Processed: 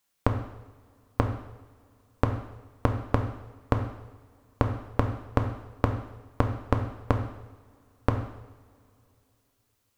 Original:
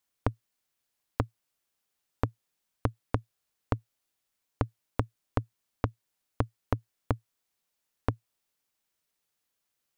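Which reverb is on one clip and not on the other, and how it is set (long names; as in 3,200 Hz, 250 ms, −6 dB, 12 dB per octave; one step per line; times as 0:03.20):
coupled-rooms reverb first 0.87 s, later 3.2 s, from −20 dB, DRR 4 dB
level +5 dB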